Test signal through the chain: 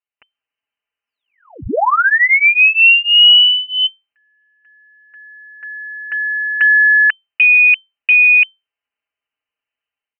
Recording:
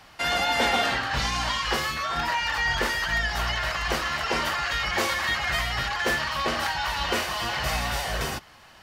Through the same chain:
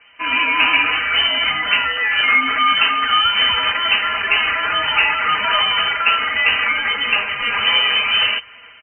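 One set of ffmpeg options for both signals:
-af "tiltshelf=f=970:g=4,aecho=1:1:5.3:0.97,dynaudnorm=f=110:g=5:m=3.16,lowpass=f=2600:t=q:w=0.5098,lowpass=f=2600:t=q:w=0.6013,lowpass=f=2600:t=q:w=0.9,lowpass=f=2600:t=q:w=2.563,afreqshift=-3100,volume=0.891"

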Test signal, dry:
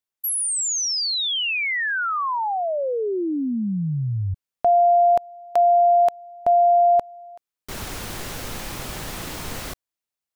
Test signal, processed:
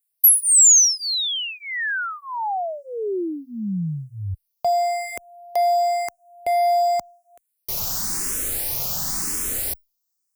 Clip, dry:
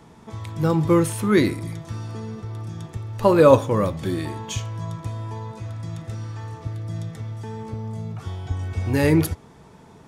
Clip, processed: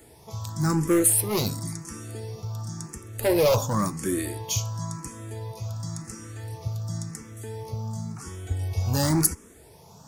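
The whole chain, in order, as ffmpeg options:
-filter_complex "[0:a]asoftclip=type=hard:threshold=0.158,aexciter=amount=4.3:drive=6.3:freq=4800,asplit=2[s0][s1];[s1]afreqshift=0.94[s2];[s0][s2]amix=inputs=2:normalize=1"

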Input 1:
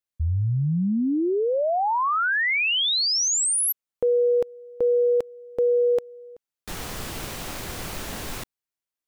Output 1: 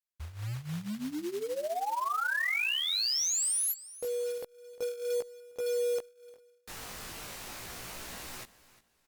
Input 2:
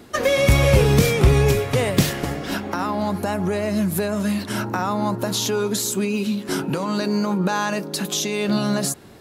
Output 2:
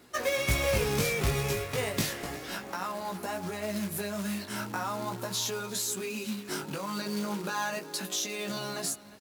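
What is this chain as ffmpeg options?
-filter_complex "[0:a]equalizer=f=3300:w=4.7:g=-2.5,asplit=2[s0][s1];[s1]aecho=0:1:354|708:0.119|0.0321[s2];[s0][s2]amix=inputs=2:normalize=0,flanger=delay=16:depth=4.1:speed=0.36,acrusher=bits=4:mode=log:mix=0:aa=0.000001,tiltshelf=f=650:g=-4,volume=0.398" -ar 48000 -c:a libopus -b:a 256k

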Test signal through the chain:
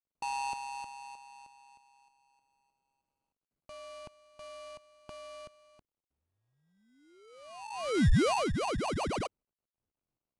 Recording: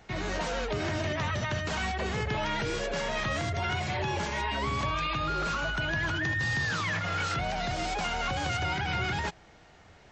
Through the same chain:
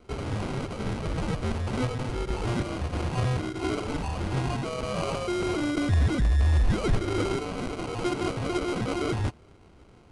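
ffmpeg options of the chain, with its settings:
-af "highpass=f=1700:t=q:w=3.9,acrusher=samples=25:mix=1:aa=0.000001" -ar 22050 -c:a adpcm_ima_wav

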